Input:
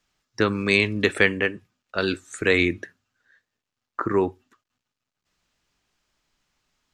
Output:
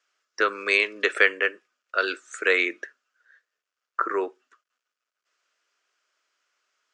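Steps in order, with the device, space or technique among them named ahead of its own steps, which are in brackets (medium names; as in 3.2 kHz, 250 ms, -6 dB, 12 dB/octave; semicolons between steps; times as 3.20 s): phone speaker on a table (cabinet simulation 430–7700 Hz, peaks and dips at 840 Hz -9 dB, 1.4 kHz +7 dB, 3.9 kHz -5 dB)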